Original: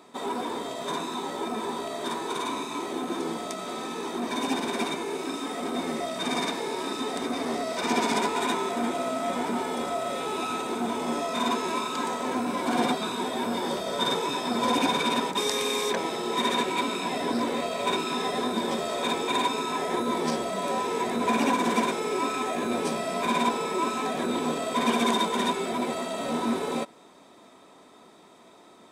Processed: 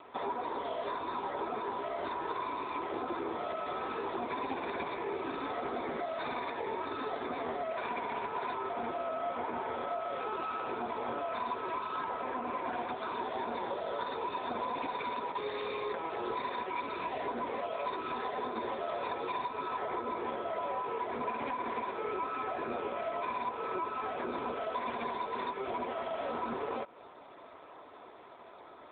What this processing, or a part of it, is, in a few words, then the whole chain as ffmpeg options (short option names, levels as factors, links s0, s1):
voicemail: -af "highpass=420,lowpass=2600,acompressor=threshold=0.0158:ratio=12,volume=1.68" -ar 8000 -c:a libopencore_amrnb -b:a 7950